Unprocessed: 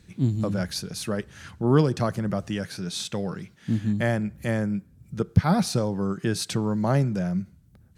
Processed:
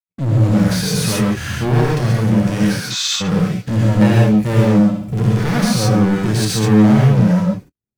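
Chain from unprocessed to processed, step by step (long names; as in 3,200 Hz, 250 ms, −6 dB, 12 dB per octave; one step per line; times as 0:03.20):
wavefolder on the positive side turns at −17.5 dBFS
camcorder AGC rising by 8.8 dB per second
leveller curve on the samples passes 5
0:02.80–0:03.21: elliptic band-pass filter 1,100–7,000 Hz
0:04.70–0:05.49: flutter between parallel walls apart 11.3 metres, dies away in 0.63 s
harmonic and percussive parts rebalanced percussive −14 dB
noise gate −25 dBFS, range −50 dB
soft clipping −9.5 dBFS, distortion −17 dB
reverb whose tail is shaped and stops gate 160 ms rising, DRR −3 dB
level −5.5 dB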